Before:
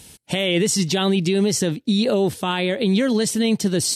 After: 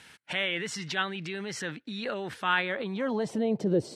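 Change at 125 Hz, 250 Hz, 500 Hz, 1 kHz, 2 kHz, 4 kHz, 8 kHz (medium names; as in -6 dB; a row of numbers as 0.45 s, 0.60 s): -14.0 dB, -13.0 dB, -10.5 dB, -4.0 dB, -2.0 dB, -11.0 dB, -19.5 dB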